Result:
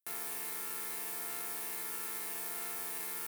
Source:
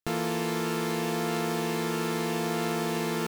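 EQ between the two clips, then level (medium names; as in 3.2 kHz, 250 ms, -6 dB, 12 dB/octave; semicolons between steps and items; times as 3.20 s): differentiator; high-order bell 4.5 kHz -8.5 dB; +1.5 dB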